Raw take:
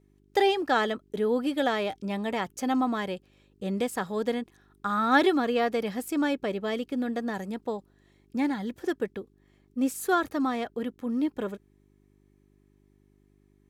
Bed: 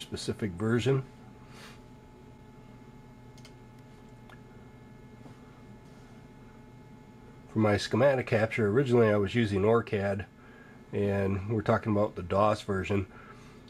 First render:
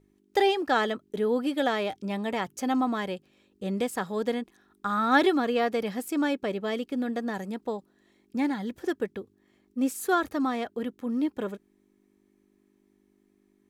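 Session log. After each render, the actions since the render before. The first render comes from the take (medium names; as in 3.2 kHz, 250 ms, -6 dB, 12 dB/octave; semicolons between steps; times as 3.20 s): de-hum 50 Hz, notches 3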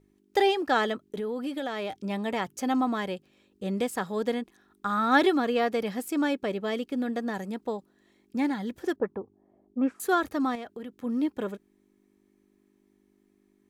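1.04–1.93 s: compression 4:1, threshold -29 dBFS; 8.96–10.00 s: touch-sensitive low-pass 660–1600 Hz up, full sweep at -22 dBFS; 10.55–11.04 s: compression 4:1, threshold -36 dBFS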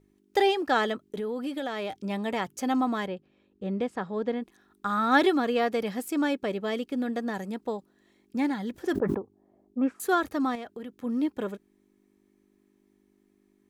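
3.07–4.42 s: tape spacing loss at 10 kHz 23 dB; 8.72–9.19 s: decay stretcher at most 45 dB/s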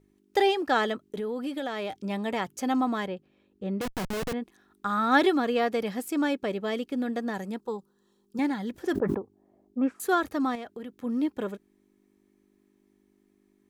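3.81–4.33 s: Schmitt trigger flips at -36.5 dBFS; 7.60–8.39 s: static phaser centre 430 Hz, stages 8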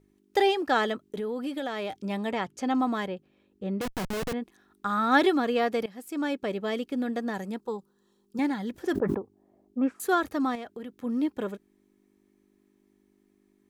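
2.31–2.80 s: distance through air 57 m; 5.86–6.70 s: fade in equal-power, from -18 dB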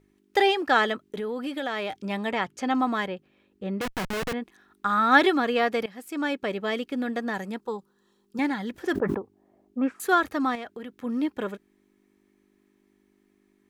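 peaking EQ 1.9 kHz +6 dB 2.2 oct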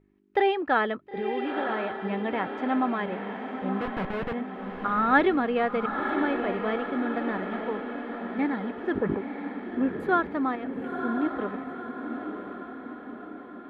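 distance through air 490 m; echo that smears into a reverb 968 ms, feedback 56%, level -6.5 dB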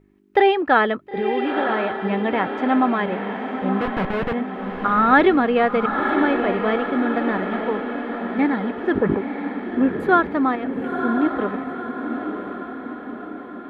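trim +7.5 dB; peak limiter -3 dBFS, peak gain reduction 2.5 dB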